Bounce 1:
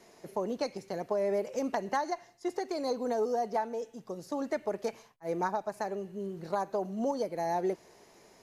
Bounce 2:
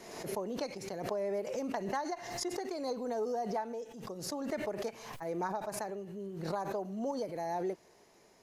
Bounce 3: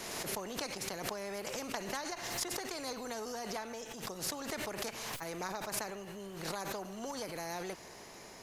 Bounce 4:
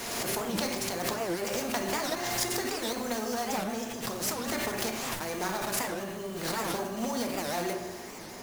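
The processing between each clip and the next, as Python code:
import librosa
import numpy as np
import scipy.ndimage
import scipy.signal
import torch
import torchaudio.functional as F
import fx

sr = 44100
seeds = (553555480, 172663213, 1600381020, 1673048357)

y1 = fx.pre_swell(x, sr, db_per_s=49.0)
y1 = y1 * librosa.db_to_amplitude(-5.0)
y2 = fx.spectral_comp(y1, sr, ratio=2.0)
y2 = y2 * librosa.db_to_amplitude(4.0)
y3 = fx.block_float(y2, sr, bits=3)
y3 = fx.rev_fdn(y3, sr, rt60_s=1.3, lf_ratio=1.2, hf_ratio=0.35, size_ms=25.0, drr_db=2.0)
y3 = fx.record_warp(y3, sr, rpm=78.0, depth_cents=250.0)
y3 = y3 * librosa.db_to_amplitude(5.0)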